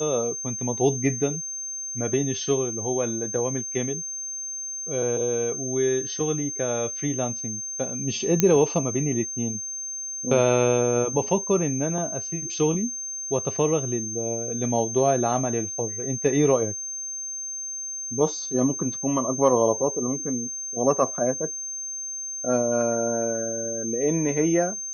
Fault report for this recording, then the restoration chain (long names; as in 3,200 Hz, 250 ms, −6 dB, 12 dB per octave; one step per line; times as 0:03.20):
whistle 6,300 Hz −30 dBFS
0:08.40: click −4 dBFS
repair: click removal
notch filter 6,300 Hz, Q 30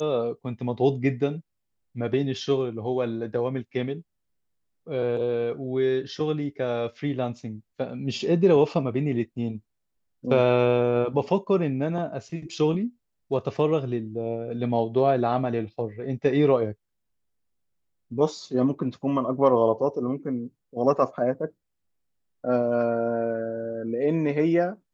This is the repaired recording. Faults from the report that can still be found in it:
none of them is left